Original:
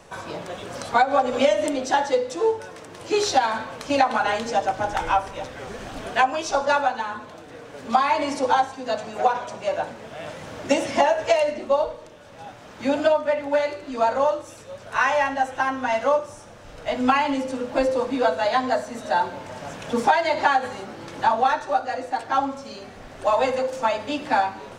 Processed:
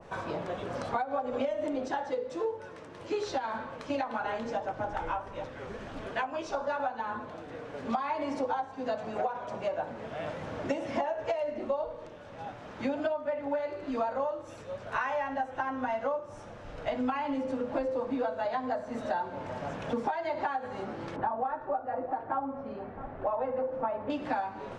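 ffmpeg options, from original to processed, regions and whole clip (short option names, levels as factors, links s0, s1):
-filter_complex "[0:a]asettb=1/sr,asplit=3[s0][s1][s2];[s0]atrim=end=1.884[s3];[s1]atrim=start=1.88:end=6.8,asetpts=PTS-STARTPTS,afade=t=in:d=0.004:c=qsin,afade=t=out:st=4.916:d=0.004:c=qsin,bandreject=f=740:w=9.5,flanger=delay=5.7:depth=9.4:regen=-69:speed=1.4:shape=triangular[s4];[s2]atrim=start=6.796[s5];[s3][s4]acrossfade=d=0.004:c1=hsin:c2=qsin[s6];[s6][s5]acrossfade=d=0.004:c1=qsin:c2=hsin,asettb=1/sr,asplit=3[s7][s8][s9];[s7]atrim=end=21.164[s10];[s8]atrim=start=21.16:end=24.1,asetpts=PTS-STARTPTS,afade=t=in:d=0.004:c=qsin,afade=t=out:st=2.936:d=0.004:c=qsin,lowpass=1400,aecho=1:1:661:0.0841,atrim=end_sample=129654[s11];[s9]atrim=start=24.096[s12];[s10][s11]acrossfade=d=0.004:c1=hsin:c2=qsin[s13];[s13][s12]acrossfade=d=0.004:c1=qsin:c2=hsin,aemphasis=mode=reproduction:type=75fm,acompressor=threshold=0.0447:ratio=6,adynamicequalizer=threshold=0.00891:dfrequency=1600:dqfactor=0.7:tfrequency=1600:tqfactor=0.7:attack=5:release=100:ratio=0.375:range=2.5:mode=cutabove:tftype=highshelf,volume=0.841"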